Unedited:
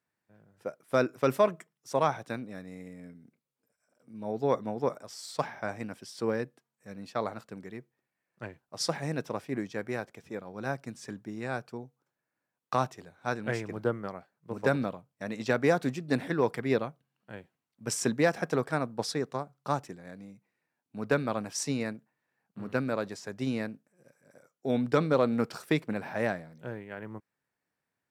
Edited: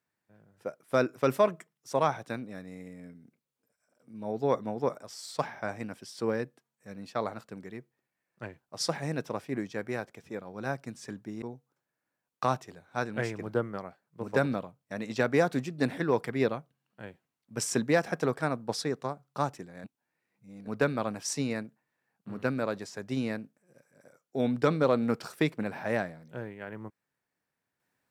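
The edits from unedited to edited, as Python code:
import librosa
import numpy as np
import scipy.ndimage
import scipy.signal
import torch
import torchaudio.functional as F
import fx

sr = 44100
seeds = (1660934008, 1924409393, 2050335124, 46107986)

y = fx.edit(x, sr, fx.cut(start_s=11.42, length_s=0.3),
    fx.reverse_span(start_s=20.14, length_s=0.83), tone=tone)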